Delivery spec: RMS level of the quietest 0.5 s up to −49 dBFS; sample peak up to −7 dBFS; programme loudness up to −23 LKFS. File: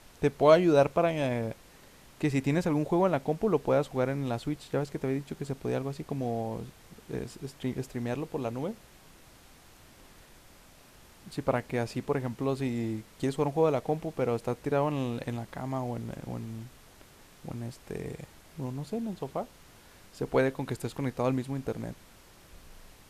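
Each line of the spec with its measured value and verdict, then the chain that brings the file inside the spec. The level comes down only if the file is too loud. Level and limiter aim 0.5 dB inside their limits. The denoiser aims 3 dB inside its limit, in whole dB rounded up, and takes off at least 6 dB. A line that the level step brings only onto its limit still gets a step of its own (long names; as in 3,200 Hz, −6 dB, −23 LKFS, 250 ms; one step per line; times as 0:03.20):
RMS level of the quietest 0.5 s −55 dBFS: in spec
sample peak −8.0 dBFS: in spec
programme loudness −30.5 LKFS: in spec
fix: no processing needed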